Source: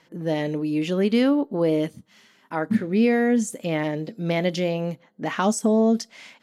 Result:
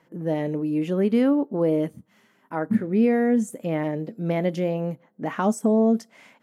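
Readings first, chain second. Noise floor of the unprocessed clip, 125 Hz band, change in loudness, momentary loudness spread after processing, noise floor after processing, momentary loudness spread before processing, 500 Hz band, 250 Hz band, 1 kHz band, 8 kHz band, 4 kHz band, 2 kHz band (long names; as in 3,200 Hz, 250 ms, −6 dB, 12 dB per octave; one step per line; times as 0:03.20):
−60 dBFS, 0.0 dB, −0.5 dB, 10 LU, −63 dBFS, 11 LU, −0.5 dB, 0.0 dB, −1.5 dB, −8.0 dB, below −10 dB, −5.5 dB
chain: high-pass filter 49 Hz
parametric band 4,400 Hz −13.5 dB 1.9 octaves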